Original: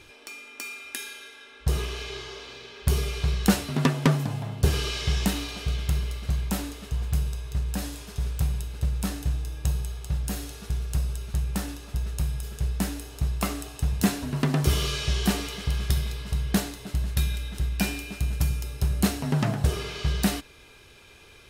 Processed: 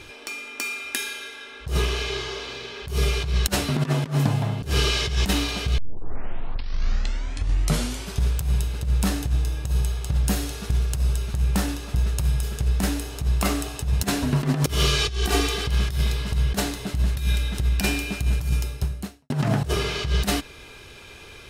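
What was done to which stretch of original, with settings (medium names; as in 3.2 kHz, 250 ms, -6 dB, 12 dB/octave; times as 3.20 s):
5.78 s: tape start 2.44 s
14.99–15.67 s: comb 2.6 ms
18.55–19.30 s: fade out quadratic
whole clip: treble shelf 9.3 kHz -4 dB; compressor with a negative ratio -26 dBFS, ratio -0.5; trim +6 dB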